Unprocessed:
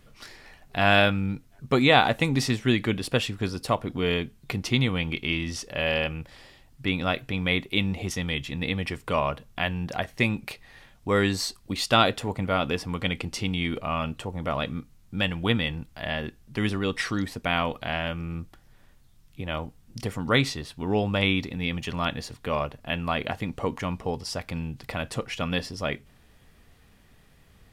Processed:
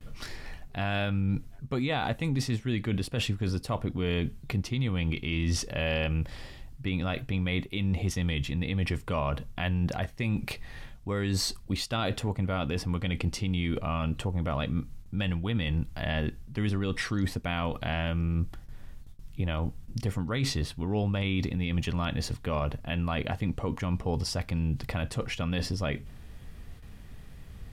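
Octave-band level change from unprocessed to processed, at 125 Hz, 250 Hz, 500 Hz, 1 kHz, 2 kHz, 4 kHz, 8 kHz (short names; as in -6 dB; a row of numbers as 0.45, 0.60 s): +1.5, -2.5, -6.5, -8.0, -8.0, -7.0, -1.5 dB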